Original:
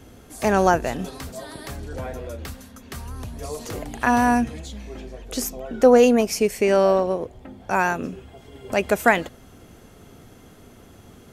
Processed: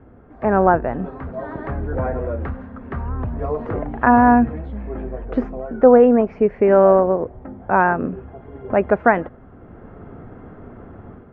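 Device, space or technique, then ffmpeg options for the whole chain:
action camera in a waterproof case: -af "lowpass=f=1.6k:w=0.5412,lowpass=f=1.6k:w=1.3066,dynaudnorm=f=300:g=3:m=9dB" -ar 44100 -c:a aac -b:a 128k

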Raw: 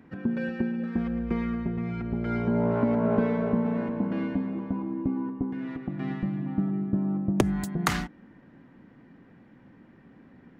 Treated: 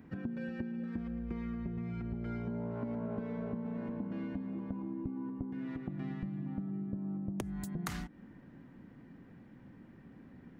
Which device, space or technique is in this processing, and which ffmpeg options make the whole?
ASMR close-microphone chain: -af "lowshelf=f=230:g=7.5,acompressor=threshold=-31dB:ratio=6,highshelf=f=6.1k:g=7.5,volume=-5dB"

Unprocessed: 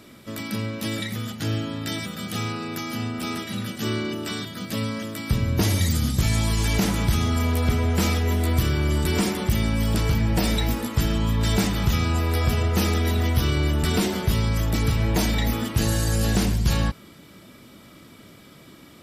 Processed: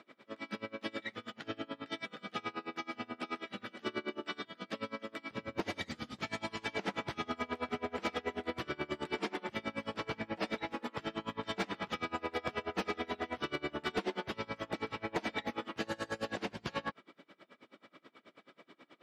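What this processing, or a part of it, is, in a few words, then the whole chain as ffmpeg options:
helicopter radio: -af "highpass=390,lowpass=2.7k,aeval=exprs='val(0)*pow(10,-28*(0.5-0.5*cos(2*PI*9.3*n/s))/20)':c=same,asoftclip=type=hard:threshold=-25dB,volume=-1dB"

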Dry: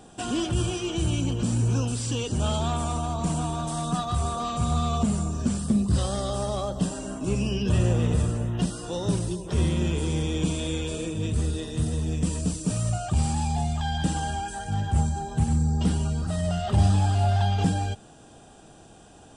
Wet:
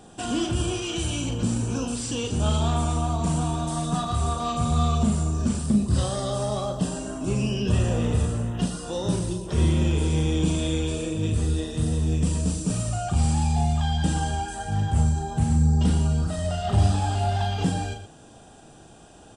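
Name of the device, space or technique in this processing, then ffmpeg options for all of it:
slapback doubling: -filter_complex "[0:a]asplit=3[a][b][c];[b]adelay=38,volume=-6dB[d];[c]adelay=117,volume=-11.5dB[e];[a][d][e]amix=inputs=3:normalize=0,asettb=1/sr,asplit=3[f][g][h];[f]atrim=end=0.824[i];[g]atrim=start=0.82:end=1.29,asetpts=PTS-STARTPTS,afade=t=in:d=0.004:c=qsin,afade=t=out:st=0.466:d=0.004:c=qsin,tiltshelf=f=970:g=-3.5[j];[h]atrim=start=1.286[k];[i][j]acrossfade=d=0.004:c1=hsin:c2=qsin[l];[l][k]acrossfade=d=0.004:c1=qsin:c2=hsin"

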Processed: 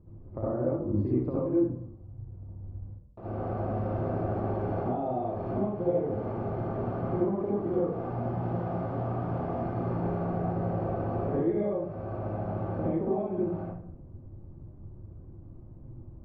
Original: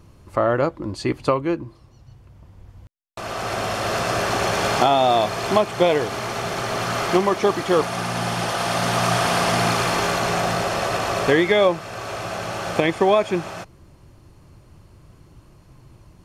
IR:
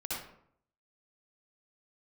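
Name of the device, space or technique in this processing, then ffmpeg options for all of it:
television next door: -filter_complex "[0:a]acompressor=threshold=-23dB:ratio=6,lowpass=450[a];[1:a]atrim=start_sample=2205[b];[a][b]afir=irnorm=-1:irlink=0,volume=-1.5dB"

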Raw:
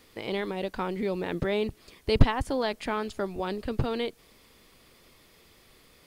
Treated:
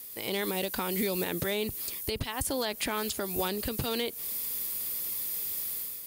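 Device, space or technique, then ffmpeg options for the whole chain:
FM broadcast chain: -filter_complex "[0:a]highpass=48,dynaudnorm=f=110:g=7:m=10dB,acrossover=split=2100|4200[a][b][c];[a]acompressor=threshold=-23dB:ratio=4[d];[b]acompressor=threshold=-35dB:ratio=4[e];[c]acompressor=threshold=-49dB:ratio=4[f];[d][e][f]amix=inputs=3:normalize=0,aemphasis=mode=production:type=50fm,alimiter=limit=-16dB:level=0:latency=1:release=197,asoftclip=type=hard:threshold=-18dB,lowpass=f=15k:w=0.5412,lowpass=f=15k:w=1.3066,aemphasis=mode=production:type=50fm,volume=-4dB"

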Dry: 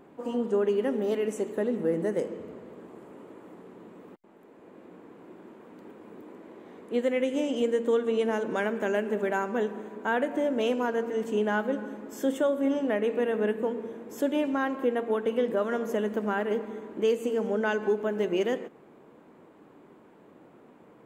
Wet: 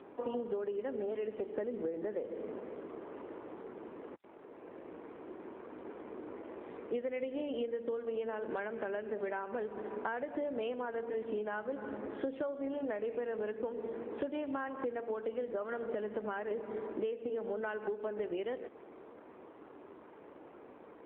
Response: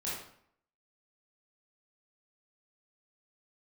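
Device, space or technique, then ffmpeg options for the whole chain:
voicemail: -af "highpass=320,lowpass=3k,acompressor=threshold=-37dB:ratio=12,volume=4dB" -ar 8000 -c:a libopencore_amrnb -b:a 7400

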